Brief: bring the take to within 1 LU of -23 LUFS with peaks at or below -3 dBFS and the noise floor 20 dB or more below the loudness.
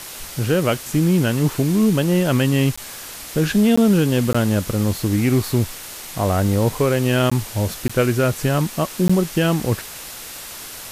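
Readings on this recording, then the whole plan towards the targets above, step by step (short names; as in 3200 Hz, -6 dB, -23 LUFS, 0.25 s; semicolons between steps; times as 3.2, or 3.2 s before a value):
dropouts 6; longest dropout 15 ms; noise floor -35 dBFS; noise floor target -39 dBFS; loudness -19.0 LUFS; peak -6.0 dBFS; loudness target -23.0 LUFS
-> interpolate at 2.76/3.76/4.33/7.3/7.88/9.08, 15 ms; denoiser 6 dB, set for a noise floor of -35 dBFS; gain -4 dB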